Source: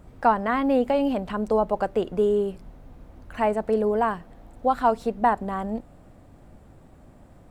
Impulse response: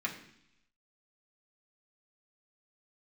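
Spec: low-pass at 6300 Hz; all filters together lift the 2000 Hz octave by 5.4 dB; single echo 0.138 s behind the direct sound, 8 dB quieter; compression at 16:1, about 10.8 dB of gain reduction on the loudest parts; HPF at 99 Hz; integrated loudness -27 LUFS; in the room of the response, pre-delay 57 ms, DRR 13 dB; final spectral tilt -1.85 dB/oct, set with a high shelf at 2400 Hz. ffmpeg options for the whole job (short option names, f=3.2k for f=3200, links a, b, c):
-filter_complex "[0:a]highpass=99,lowpass=6.3k,equalizer=f=2k:t=o:g=8.5,highshelf=f=2.4k:g=-3.5,acompressor=threshold=-24dB:ratio=16,aecho=1:1:138:0.398,asplit=2[a][b];[1:a]atrim=start_sample=2205,adelay=57[c];[b][c]afir=irnorm=-1:irlink=0,volume=-17.5dB[d];[a][d]amix=inputs=2:normalize=0,volume=2.5dB"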